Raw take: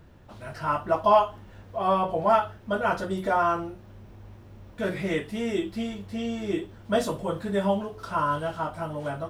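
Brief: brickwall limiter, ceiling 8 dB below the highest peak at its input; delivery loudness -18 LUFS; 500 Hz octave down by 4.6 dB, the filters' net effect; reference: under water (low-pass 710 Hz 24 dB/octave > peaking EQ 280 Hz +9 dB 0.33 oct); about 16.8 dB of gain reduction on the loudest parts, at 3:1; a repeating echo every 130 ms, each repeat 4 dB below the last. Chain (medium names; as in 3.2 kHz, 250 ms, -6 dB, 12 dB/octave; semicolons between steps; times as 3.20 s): peaking EQ 500 Hz -5.5 dB; compression 3:1, threshold -40 dBFS; peak limiter -34 dBFS; low-pass 710 Hz 24 dB/octave; peaking EQ 280 Hz +9 dB 0.33 oct; feedback delay 130 ms, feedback 63%, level -4 dB; trim +23.5 dB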